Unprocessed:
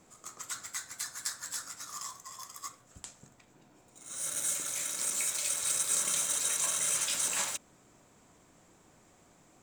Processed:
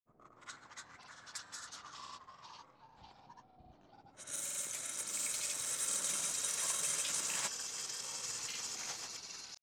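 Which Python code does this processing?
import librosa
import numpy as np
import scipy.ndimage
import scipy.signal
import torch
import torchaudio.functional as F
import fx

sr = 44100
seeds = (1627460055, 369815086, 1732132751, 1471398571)

y = fx.env_lowpass(x, sr, base_hz=680.0, full_db=-30.5)
y = fx.echo_pitch(y, sr, ms=122, semitones=-3, count=3, db_per_echo=-6.0)
y = fx.granulator(y, sr, seeds[0], grain_ms=100.0, per_s=20.0, spray_ms=100.0, spread_st=0)
y = y * 10.0 ** (-4.5 / 20.0)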